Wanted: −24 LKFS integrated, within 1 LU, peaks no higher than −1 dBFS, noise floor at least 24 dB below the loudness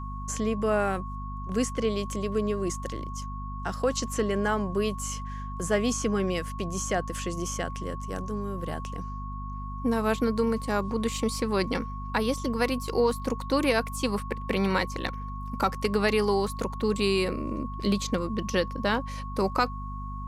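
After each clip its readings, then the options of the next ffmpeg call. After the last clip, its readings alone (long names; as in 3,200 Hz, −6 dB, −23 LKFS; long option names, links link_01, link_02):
mains hum 50 Hz; hum harmonics up to 250 Hz; level of the hum −34 dBFS; interfering tone 1,100 Hz; level of the tone −39 dBFS; integrated loudness −29.0 LKFS; sample peak −11.0 dBFS; target loudness −24.0 LKFS
→ -af "bandreject=frequency=50:width_type=h:width=6,bandreject=frequency=100:width_type=h:width=6,bandreject=frequency=150:width_type=h:width=6,bandreject=frequency=200:width_type=h:width=6,bandreject=frequency=250:width_type=h:width=6"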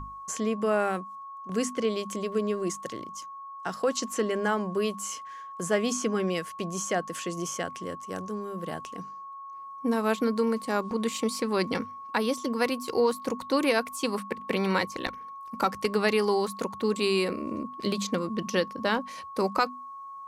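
mains hum none found; interfering tone 1,100 Hz; level of the tone −39 dBFS
→ -af "bandreject=frequency=1100:width=30"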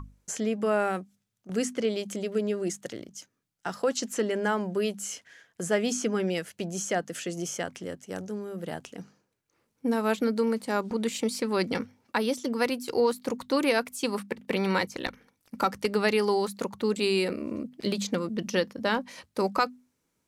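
interfering tone none found; integrated loudness −29.5 LKFS; sample peak −11.5 dBFS; target loudness −24.0 LKFS
→ -af "volume=5.5dB"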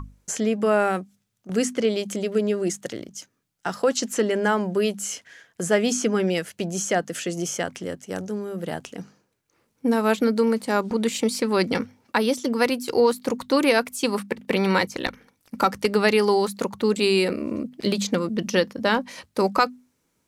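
integrated loudness −24.0 LKFS; sample peak −6.0 dBFS; background noise floor −72 dBFS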